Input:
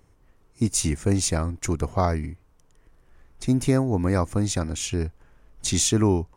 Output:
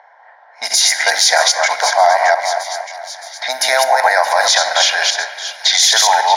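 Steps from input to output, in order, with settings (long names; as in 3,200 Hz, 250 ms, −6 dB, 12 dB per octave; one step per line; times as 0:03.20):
delay that plays each chunk backwards 138 ms, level −3 dB
low-pass that shuts in the quiet parts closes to 1,400 Hz, open at −16.5 dBFS
in parallel at 0 dB: downward compressor, threshold −31 dBFS, peak gain reduction 16.5 dB
on the sum: Chebyshev high-pass filter 690 Hz, order 4
phaser with its sweep stopped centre 1,800 Hz, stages 8
hollow resonant body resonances 1,600/2,800 Hz, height 7 dB
on a send: echo with a time of its own for lows and highs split 2,300 Hz, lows 232 ms, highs 619 ms, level −14 dB
on the sum: rectangular room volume 1,100 cubic metres, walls mixed, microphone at 0.37 metres
boost into a limiter +25 dB
level −1 dB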